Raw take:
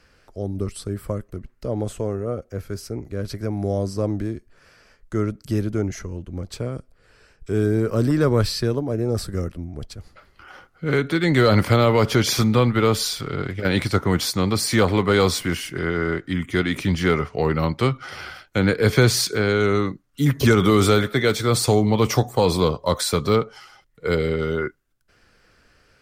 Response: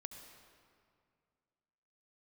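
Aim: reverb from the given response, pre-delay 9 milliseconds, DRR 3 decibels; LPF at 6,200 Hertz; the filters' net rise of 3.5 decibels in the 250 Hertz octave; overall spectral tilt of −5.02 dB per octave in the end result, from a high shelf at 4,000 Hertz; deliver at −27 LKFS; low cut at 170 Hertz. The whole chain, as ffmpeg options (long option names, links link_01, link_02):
-filter_complex "[0:a]highpass=170,lowpass=6200,equalizer=frequency=250:width_type=o:gain=6,highshelf=frequency=4000:gain=7.5,asplit=2[link_01][link_02];[1:a]atrim=start_sample=2205,adelay=9[link_03];[link_02][link_03]afir=irnorm=-1:irlink=0,volume=1dB[link_04];[link_01][link_04]amix=inputs=2:normalize=0,volume=-9.5dB"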